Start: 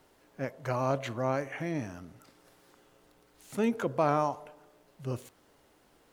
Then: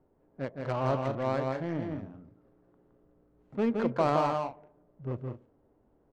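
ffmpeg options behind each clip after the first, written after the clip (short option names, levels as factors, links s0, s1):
-af "adynamicsmooth=sensitivity=3:basefreq=580,aecho=1:1:166.2|204.1:0.631|0.251"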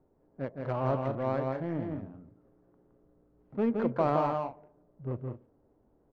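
-af "lowpass=f=1500:p=1"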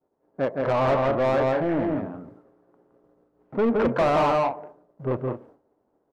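-filter_complex "[0:a]agate=range=0.0224:threshold=0.00158:ratio=3:detection=peak,asplit=2[s0][s1];[s1]highpass=f=720:p=1,volume=22.4,asoftclip=type=tanh:threshold=0.237[s2];[s0][s2]amix=inputs=2:normalize=0,lowpass=f=1700:p=1,volume=0.501"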